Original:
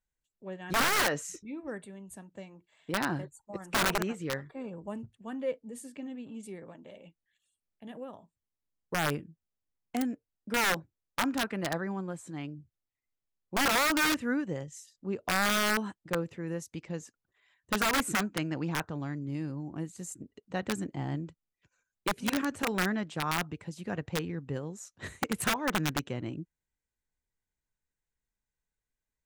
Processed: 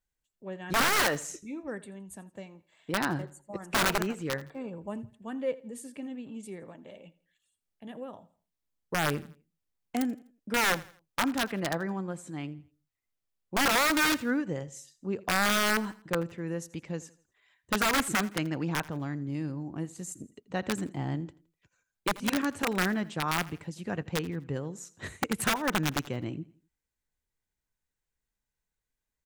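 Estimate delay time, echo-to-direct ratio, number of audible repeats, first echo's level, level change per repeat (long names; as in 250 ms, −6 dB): 83 ms, −19.5 dB, 2, −20.0 dB, −8.5 dB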